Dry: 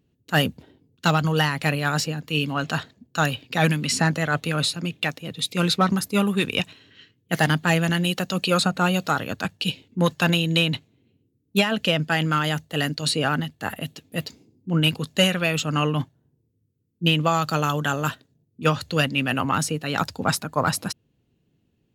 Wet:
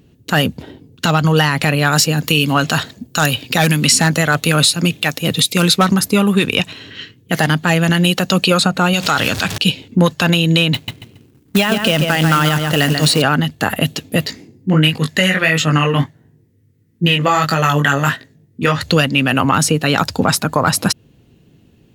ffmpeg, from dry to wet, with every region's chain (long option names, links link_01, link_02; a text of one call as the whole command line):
ffmpeg -i in.wav -filter_complex "[0:a]asettb=1/sr,asplit=3[link_01][link_02][link_03];[link_01]atrim=end=1.924[link_04];[link_02]atrim=start=1.92:end=5.94,asetpts=PTS-STARTPTS,afade=type=in:duration=0.004:curve=qsin,afade=type=out:start_time=4.016:duration=0.004:curve=qsin,aeval=exprs='0.299*(abs(mod(val(0)/0.299+3,4)-2)-1)':channel_layout=same,highshelf=frequency=5600:gain=10.5[link_05];[link_03]atrim=start=5.936[link_06];[link_04][link_05]acrossfade=duration=0.004:curve1=hsin:curve2=qsin[link_07];[link_07][link_06]acrossfade=duration=0.004:curve1=qsin:curve2=hsin,asettb=1/sr,asplit=3[link_08][link_09][link_10];[link_08]atrim=end=8.934[link_11];[link_09]atrim=start=8.93:end=9.58,asetpts=PTS-STARTPTS,afade=type=in:duration=0.004:curve=qsin,afade=type=out:start_time=0.646:duration=0.004:curve=qsin,aeval=exprs='val(0)+0.5*0.0168*sgn(val(0))':channel_layout=same,equalizer=frequency=4300:width=0.36:gain=10,acompressor=threshold=-24dB:ratio=2.5:attack=3.2:release=140:knee=1:detection=peak[link_12];[link_10]atrim=start=9.576[link_13];[link_11][link_12]acrossfade=duration=0.004:curve1=hsin:curve2=qsin[link_14];[link_14][link_13]acrossfade=duration=0.004:curve1=qsin:curve2=hsin,asettb=1/sr,asplit=3[link_15][link_16][link_17];[link_15]atrim=end=10.744[link_18];[link_16]atrim=start=10.74:end=13.22,asetpts=PTS-STARTPTS,afade=type=in:duration=0.004:curve=qsin,afade=type=out:start_time=2.476:duration=0.004:curve=qsin,asplit=2[link_19][link_20];[link_20]adelay=138,lowpass=frequency=3400:poles=1,volume=-8dB,asplit=2[link_21][link_22];[link_22]adelay=138,lowpass=frequency=3400:poles=1,volume=0.25,asplit=2[link_23][link_24];[link_24]adelay=138,lowpass=frequency=3400:poles=1,volume=0.25[link_25];[link_19][link_21][link_23][link_25]amix=inputs=4:normalize=0,atrim=end_sample=109368,acrusher=bits=3:mode=log:mix=0:aa=0.000001[link_26];[link_17]atrim=start=13.216[link_27];[link_18][link_26]acrossfade=duration=0.004:curve1=hsin:curve2=qsin[link_28];[link_28][link_27]acrossfade=duration=0.004:curve1=qsin:curve2=hsin,asettb=1/sr,asplit=3[link_29][link_30][link_31];[link_29]atrim=end=14.264[link_32];[link_30]atrim=start=14.26:end=18.83,asetpts=PTS-STARTPTS,afade=type=in:duration=0.004:curve=qsin,afade=type=out:start_time=4.566:duration=0.004:curve=qsin,equalizer=frequency=1900:width_type=o:width=0.37:gain=13.5,flanger=delay=18.5:depth=3.4:speed=1.5[link_33];[link_31]atrim=start=18.826[link_34];[link_32][link_33]acrossfade=duration=0.004:curve1=hsin:curve2=qsin[link_35];[link_35][link_34]acrossfade=duration=0.004:curve1=qsin:curve2=hsin,acompressor=threshold=-29dB:ratio=4,alimiter=level_in=19dB:limit=-1dB:release=50:level=0:latency=1,volume=-1dB" out.wav